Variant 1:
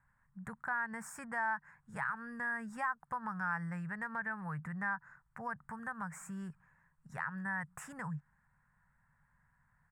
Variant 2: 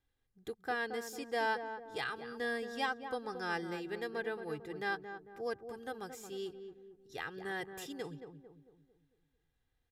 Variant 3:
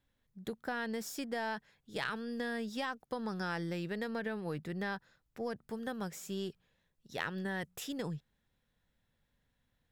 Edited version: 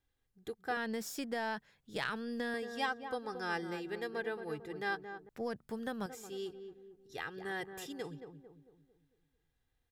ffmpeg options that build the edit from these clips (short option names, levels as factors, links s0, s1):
-filter_complex "[2:a]asplit=2[s0][s1];[1:a]asplit=3[s2][s3][s4];[s2]atrim=end=0.772[s5];[s0]atrim=start=0.768:end=2.542[s6];[s3]atrim=start=2.538:end=5.292[s7];[s1]atrim=start=5.288:end=6.062[s8];[s4]atrim=start=6.058[s9];[s5][s6]acrossfade=d=0.004:c1=hsin:c2=hsin[s10];[s10][s7]acrossfade=d=0.004:c1=hsin:c2=hsin[s11];[s11][s8]acrossfade=d=0.004:c1=hsin:c2=hsin[s12];[s12][s9]acrossfade=d=0.004:c1=hsin:c2=hsin"